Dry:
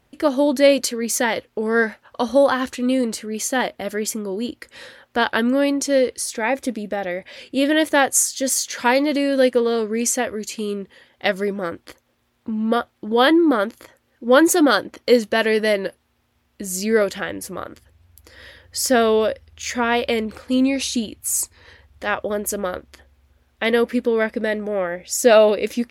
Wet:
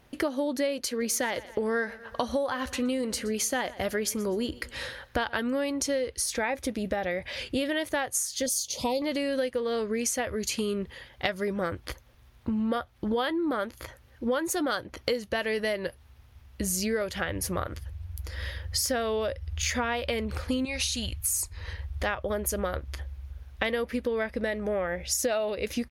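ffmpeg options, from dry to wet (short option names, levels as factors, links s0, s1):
-filter_complex "[0:a]asplit=3[s0][s1][s2];[s0]afade=t=out:st=1:d=0.02[s3];[s1]aecho=1:1:122|244|366:0.075|0.0285|0.0108,afade=t=in:st=1:d=0.02,afade=t=out:st=5.39:d=0.02[s4];[s2]afade=t=in:st=5.39:d=0.02[s5];[s3][s4][s5]amix=inputs=3:normalize=0,asettb=1/sr,asplit=3[s6][s7][s8];[s6]atrim=end=8.464[s9];[s7]atrim=start=8.46:end=9.02,asetpts=PTS-STARTPTS,afade=t=in:d=0.004:c=qsin,afade=t=out:st=0.556:d=0.004:c=qsin,asuperstop=centerf=1600:order=4:qfactor=0.6[s10];[s8]atrim=start=9.016[s11];[s9][s10]acrossfade=d=0.004:c1=hsin:c2=qsin[s12];[s12][s11]acrossfade=d=0.004:c1=qsin:c2=hsin,asettb=1/sr,asplit=3[s13][s14][s15];[s13]atrim=end=20.654[s16];[s14]atrim=start=20.65:end=21.36,asetpts=PTS-STARTPTS,afade=t=in:d=0.004:c=qsin,afade=t=out:st=0.706:d=0.004:c=qsin,equalizer=f=330:w=1:g=-14[s17];[s15]atrim=start=21.356[s18];[s16][s17]acrossfade=d=0.004:c1=hsin:c2=qsin[s19];[s19][s18]acrossfade=d=0.004:c1=qsin:c2=hsin,bandreject=f=7600:w=8.2,asubboost=boost=8.5:cutoff=83,acompressor=threshold=0.0355:ratio=10,volume=1.5"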